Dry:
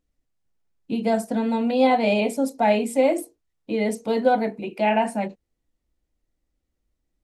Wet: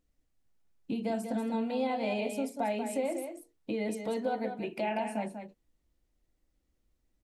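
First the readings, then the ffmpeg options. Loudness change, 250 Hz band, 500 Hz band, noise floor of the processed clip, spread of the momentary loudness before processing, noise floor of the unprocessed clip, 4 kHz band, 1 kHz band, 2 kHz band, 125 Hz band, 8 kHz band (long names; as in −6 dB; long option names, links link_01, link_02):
−11.5 dB, −10.0 dB, −11.5 dB, −77 dBFS, 10 LU, −79 dBFS, −11.0 dB, −12.0 dB, −11.5 dB, can't be measured, −8.5 dB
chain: -filter_complex "[0:a]acompressor=threshold=-34dB:ratio=3,asplit=2[link_01][link_02];[link_02]aecho=0:1:190:0.398[link_03];[link_01][link_03]amix=inputs=2:normalize=0"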